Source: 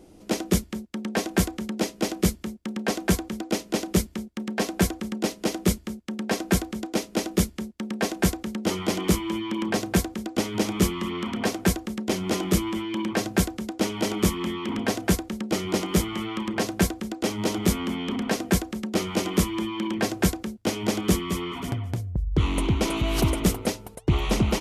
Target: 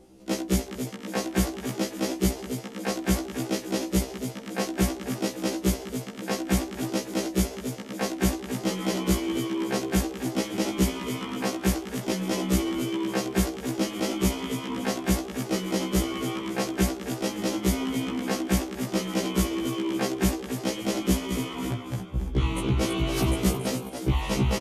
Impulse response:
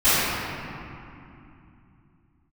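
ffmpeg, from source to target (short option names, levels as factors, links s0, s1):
-filter_complex "[0:a]asplit=6[s0][s1][s2][s3][s4][s5];[s1]adelay=278,afreqshift=66,volume=0.355[s6];[s2]adelay=556,afreqshift=132,volume=0.157[s7];[s3]adelay=834,afreqshift=198,volume=0.0684[s8];[s4]adelay=1112,afreqshift=264,volume=0.0302[s9];[s5]adelay=1390,afreqshift=330,volume=0.0133[s10];[s0][s6][s7][s8][s9][s10]amix=inputs=6:normalize=0,afftfilt=real='re*1.73*eq(mod(b,3),0)':imag='im*1.73*eq(mod(b,3),0)':win_size=2048:overlap=0.75"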